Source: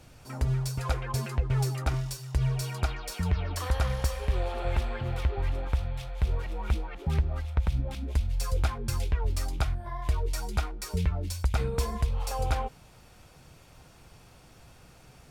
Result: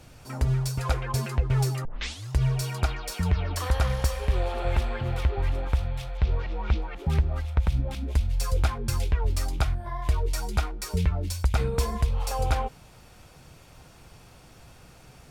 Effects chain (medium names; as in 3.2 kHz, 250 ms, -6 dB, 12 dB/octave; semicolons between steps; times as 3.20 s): 1.85 s: tape start 0.46 s; 6.17–6.82 s: low-pass 5.3 kHz 24 dB/octave; trim +3 dB